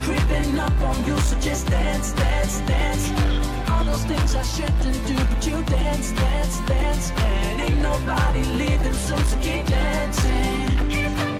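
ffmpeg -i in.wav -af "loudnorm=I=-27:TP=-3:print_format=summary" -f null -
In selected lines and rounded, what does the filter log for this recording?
Input Integrated:    -22.4 LUFS
Input True Peak:     -10.9 dBTP
Input LRA:             0.6 LU
Input Threshold:     -32.4 LUFS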